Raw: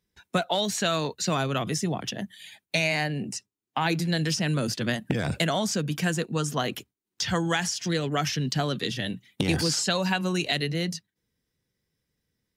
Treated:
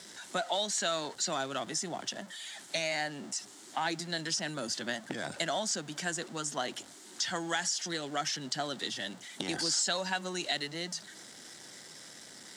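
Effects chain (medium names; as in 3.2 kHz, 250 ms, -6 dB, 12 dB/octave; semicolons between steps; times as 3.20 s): jump at every zero crossing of -34.5 dBFS; cabinet simulation 370–9300 Hz, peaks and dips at 460 Hz -9 dB, 1.1 kHz -5 dB, 2.5 kHz -9 dB, 7.5 kHz +4 dB; word length cut 12-bit, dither triangular; trim -4.5 dB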